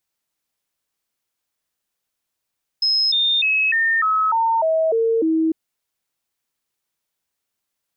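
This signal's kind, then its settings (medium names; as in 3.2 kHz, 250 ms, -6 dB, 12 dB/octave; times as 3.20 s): stepped sine 5.14 kHz down, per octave 2, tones 9, 0.30 s, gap 0.00 s -15 dBFS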